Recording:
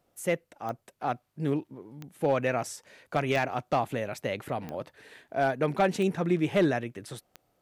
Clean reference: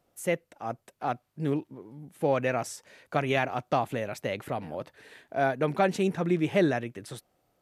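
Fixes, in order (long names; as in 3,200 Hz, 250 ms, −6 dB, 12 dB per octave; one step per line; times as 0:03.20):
clipped peaks rebuilt −16 dBFS
click removal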